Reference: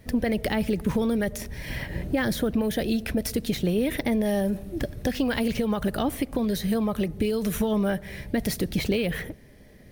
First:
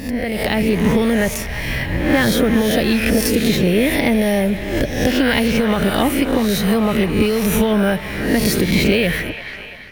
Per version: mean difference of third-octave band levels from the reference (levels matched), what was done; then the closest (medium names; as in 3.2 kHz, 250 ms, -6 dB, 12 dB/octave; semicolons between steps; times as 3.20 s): 5.5 dB: reverse spectral sustain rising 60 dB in 0.71 s; feedback echo behind a band-pass 342 ms, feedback 74%, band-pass 1.6 kHz, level -9.5 dB; level rider gain up to 8 dB; peaking EQ 2.5 kHz +4 dB 0.53 oct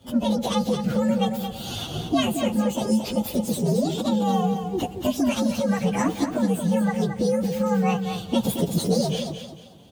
7.0 dB: frequency axis rescaled in octaves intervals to 128%; high-pass 120 Hz 12 dB/octave; gain riding within 3 dB 0.5 s; on a send: feedback delay 223 ms, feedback 29%, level -7.5 dB; on the sum: trim +5.5 dB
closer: first